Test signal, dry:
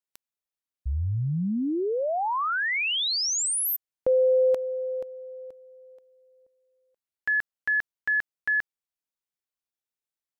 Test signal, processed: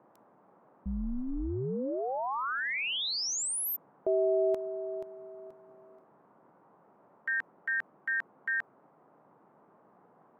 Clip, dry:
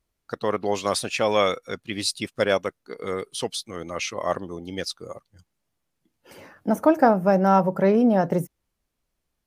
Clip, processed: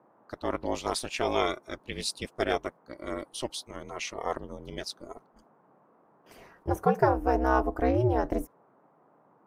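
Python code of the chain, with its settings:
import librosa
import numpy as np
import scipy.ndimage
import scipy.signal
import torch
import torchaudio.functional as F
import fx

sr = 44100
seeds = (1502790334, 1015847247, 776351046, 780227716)

y = fx.gate_hold(x, sr, open_db=-45.0, close_db=-53.0, hold_ms=31.0, range_db=-13, attack_ms=0.84, release_ms=39.0)
y = y * np.sin(2.0 * np.pi * 130.0 * np.arange(len(y)) / sr)
y = fx.dmg_noise_band(y, sr, seeds[0], low_hz=140.0, high_hz=1100.0, level_db=-59.0)
y = y * librosa.db_to_amplitude(-3.5)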